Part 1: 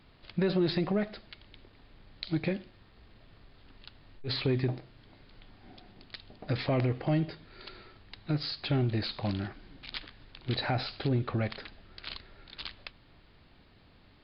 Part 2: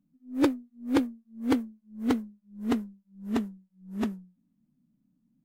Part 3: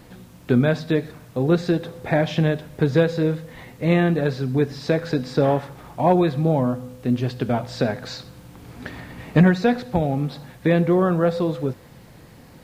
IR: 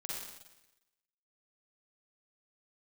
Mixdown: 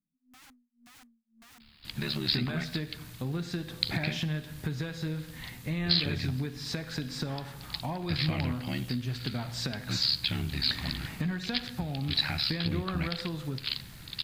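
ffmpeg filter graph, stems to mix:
-filter_complex "[0:a]aeval=exprs='val(0)*sin(2*PI*36*n/s)':c=same,crystalizer=i=6:c=0,adelay=1600,volume=1.06[s0];[1:a]acompressor=threshold=0.0282:ratio=3,aeval=exprs='(mod(47.3*val(0)+1,2)-1)/47.3':c=same,volume=0.2[s1];[2:a]highshelf=f=6300:g=7,alimiter=limit=0.316:level=0:latency=1:release=247,adelay=1850,volume=0.891,asplit=2[s2][s3];[s3]volume=0.126[s4];[s1][s2]amix=inputs=2:normalize=0,acompressor=threshold=0.0447:ratio=5,volume=1[s5];[3:a]atrim=start_sample=2205[s6];[s4][s6]afir=irnorm=-1:irlink=0[s7];[s0][s5][s7]amix=inputs=3:normalize=0,equalizer=f=500:t=o:w=1.6:g=-13.5"

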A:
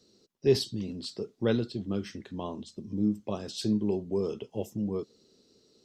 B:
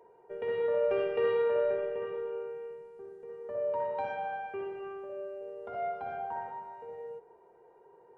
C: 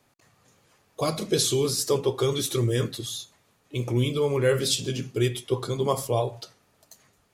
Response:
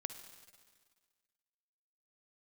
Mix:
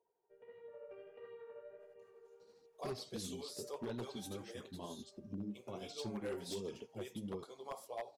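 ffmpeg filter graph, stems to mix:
-filter_complex "[0:a]acompressor=threshold=0.0398:ratio=6,adelay=2400,volume=0.501[s0];[1:a]volume=0.1[s1];[2:a]highpass=480,equalizer=f=740:t=o:w=1:g=9,adelay=1800,volume=0.133[s2];[s0][s1][s2]amix=inputs=3:normalize=0,tremolo=f=12:d=0.32,flanger=delay=0.3:depth=7.8:regen=-25:speed=1.5:shape=sinusoidal,aeval=exprs='0.0188*(abs(mod(val(0)/0.0188+3,4)-2)-1)':c=same"

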